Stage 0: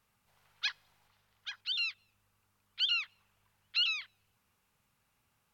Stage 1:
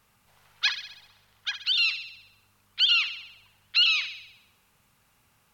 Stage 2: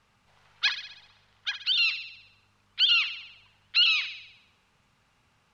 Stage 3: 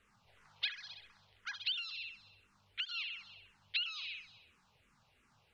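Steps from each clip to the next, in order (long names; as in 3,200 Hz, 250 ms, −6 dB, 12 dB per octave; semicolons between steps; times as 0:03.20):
in parallel at −2 dB: output level in coarse steps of 21 dB; on the sum: delay with a high-pass on its return 64 ms, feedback 58%, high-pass 2,100 Hz, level −9 dB; level +7.5 dB
low-pass filter 5,500 Hz 12 dB per octave
downward compressor 12 to 1, threshold −31 dBFS, peak gain reduction 14 dB; frequency shifter mixed with the dry sound −2.9 Hz; level −1 dB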